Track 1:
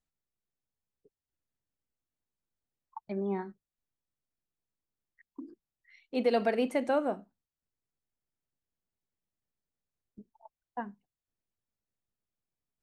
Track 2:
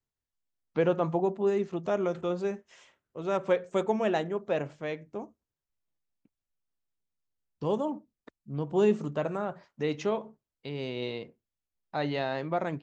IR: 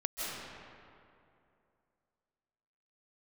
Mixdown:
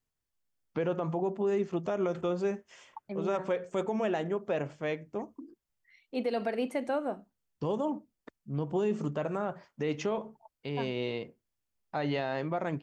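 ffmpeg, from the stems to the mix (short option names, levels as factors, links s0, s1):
-filter_complex "[0:a]volume=0.794[s0];[1:a]bandreject=f=3900:w=10,volume=1.19[s1];[s0][s1]amix=inputs=2:normalize=0,alimiter=limit=0.0841:level=0:latency=1:release=83"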